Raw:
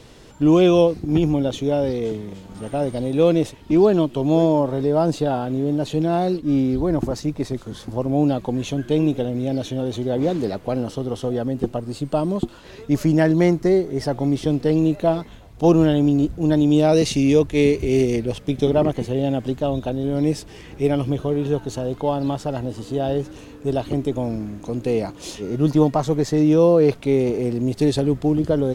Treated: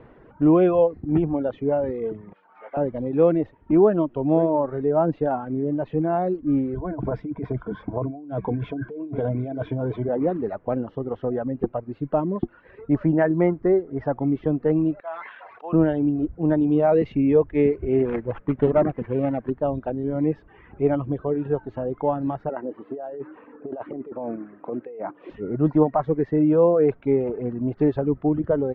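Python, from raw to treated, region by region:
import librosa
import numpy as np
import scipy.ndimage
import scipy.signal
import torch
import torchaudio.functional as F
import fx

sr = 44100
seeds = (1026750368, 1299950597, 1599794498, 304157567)

y = fx.chain(x, sr, fx.highpass(hz=760.0, slope=12),
    fx.doubler(ms=17.0, db=-8.0),
    fx.resample_bad(factor=4, down='none', up='hold'), at=(2.33, 2.77))
y = fx.chain(y, sr, fx.ripple_eq(per_octave=1.7, db=11),
    fx.over_compress(threshold_db=-24.0, ratio=-1.0), at=(6.74, 10.09))
y = fx.chain(y, sr, fx.highpass(hz=1500.0, slope=12),
    fx.high_shelf(hz=3300.0, db=-8.5),
    fx.sustainer(db_per_s=22.0), at=(15.0, 15.73))
y = fx.chain(y, sr, fx.high_shelf(hz=2300.0, db=10.5),
    fx.running_max(window=9), at=(18.05, 19.5))
y = fx.chain(y, sr, fx.bandpass_edges(low_hz=300.0, high_hz=2300.0),
    fx.over_compress(threshold_db=-29.0, ratio=-1.0), at=(22.49, 25.3))
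y = fx.dereverb_blind(y, sr, rt60_s=1.1)
y = scipy.signal.sosfilt(scipy.signal.butter(4, 1800.0, 'lowpass', fs=sr, output='sos'), y)
y = fx.low_shelf(y, sr, hz=130.0, db=-6.0)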